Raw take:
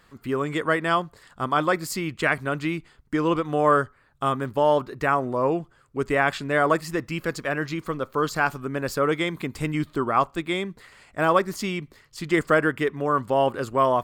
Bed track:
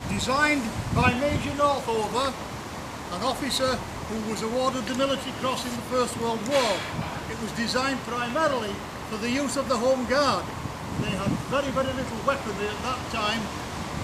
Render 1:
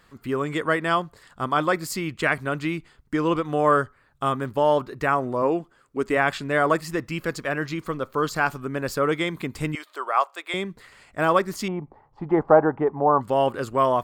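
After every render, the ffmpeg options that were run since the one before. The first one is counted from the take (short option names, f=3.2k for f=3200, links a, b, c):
-filter_complex "[0:a]asettb=1/sr,asplit=3[a][b][c];[a]atrim=end=5.424[d];[b]atrim=start=5.42:end=6.17,asetpts=PTS-STARTPTS,afade=t=in:d=0.004:c=qsin,afade=t=out:st=0.746:d=0.004:c=qsin,lowshelf=f=170:t=q:w=1.5:g=-6.5[e];[c]atrim=start=6.166[f];[d][e]acrossfade=d=0.004:c1=hsin:c2=qsin[g];[g][f]acrossfade=d=0.004:c1=qsin:c2=hsin,asettb=1/sr,asplit=3[h][i][j];[h]atrim=end=9.754[k];[i]atrim=start=9.75:end=10.54,asetpts=PTS-STARTPTS,afade=t=in:d=0.004:c=qsin,afade=t=out:st=0.786:d=0.004:c=qsin,highpass=f=540:w=0.5412,highpass=f=540:w=1.3066[l];[j]atrim=start=10.536[m];[k][l]acrossfade=d=0.004:c1=hsin:c2=qsin[n];[n][m]acrossfade=d=0.004:c1=qsin:c2=hsin,asettb=1/sr,asplit=3[o][p][q];[o]atrim=end=11.684[r];[p]atrim=start=11.68:end=13.21,asetpts=PTS-STARTPTS,afade=t=in:d=0.004:c=qsin,afade=t=out:st=1.526:d=0.004:c=qsin,lowpass=f=830:t=q:w=9.8[s];[q]atrim=start=13.206[t];[r][s]acrossfade=d=0.004:c1=hsin:c2=qsin[u];[u][t]acrossfade=d=0.004:c1=qsin:c2=hsin"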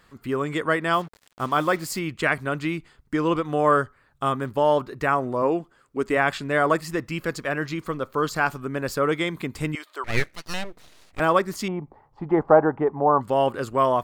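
-filter_complex "[0:a]asettb=1/sr,asplit=3[a][b][c];[a]atrim=end=0.934[d];[b]atrim=start=0.93:end=1.99,asetpts=PTS-STARTPTS,afade=t=in:d=0.004:c=qsin,afade=t=out:st=1.056:d=0.004:c=qsin,acrusher=bits=6:mix=0:aa=0.5[e];[c]atrim=start=1.986[f];[d][e]acrossfade=d=0.004:c1=hsin:c2=qsin[g];[g][f]acrossfade=d=0.004:c1=qsin:c2=hsin,asettb=1/sr,asplit=3[h][i][j];[h]atrim=end=10.044[k];[i]atrim=start=10.04:end=11.2,asetpts=PTS-STARTPTS,afade=t=in:d=0.004:c=qsin,afade=t=out:st=1.156:d=0.004:c=qsin,aeval=exprs='abs(val(0))':c=same[l];[j]atrim=start=11.196[m];[k][l]acrossfade=d=0.004:c1=hsin:c2=qsin[n];[n][m]acrossfade=d=0.004:c1=qsin:c2=hsin"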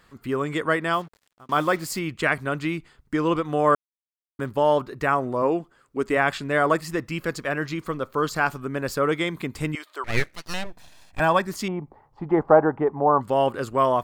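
-filter_complex "[0:a]asettb=1/sr,asplit=3[a][b][c];[a]atrim=end=10.664[d];[b]atrim=start=10.66:end=11.47,asetpts=PTS-STARTPTS,afade=t=in:d=0.004:c=qsin,afade=t=out:st=0.806:d=0.004:c=qsin,aecho=1:1:1.2:0.54,atrim=end_sample=35721[e];[c]atrim=start=11.466[f];[d][e]acrossfade=d=0.004:c1=hsin:c2=qsin[g];[g][f]acrossfade=d=0.004:c1=qsin:c2=hsin,asplit=4[h][i][j][k];[h]atrim=end=1.49,asetpts=PTS-STARTPTS,afade=t=out:st=0.81:d=0.68[l];[i]atrim=start=1.49:end=3.75,asetpts=PTS-STARTPTS,afade=t=in:d=0.004:c=hsin,afade=t=out:st=2.256:d=0.004:c=hsin[m];[j]atrim=start=3.75:end=4.39,asetpts=PTS-STARTPTS,volume=0[n];[k]atrim=start=4.39,asetpts=PTS-STARTPTS,afade=t=in:d=0.004:c=hsin[o];[l][m][n][o]concat=n=4:v=0:a=1"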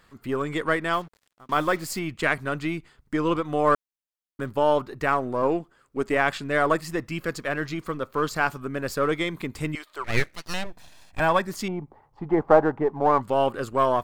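-af "aeval=exprs='if(lt(val(0),0),0.708*val(0),val(0))':c=same"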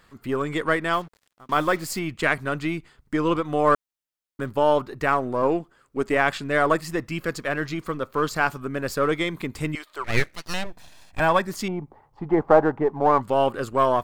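-af "volume=1.5dB,alimiter=limit=-3dB:level=0:latency=1"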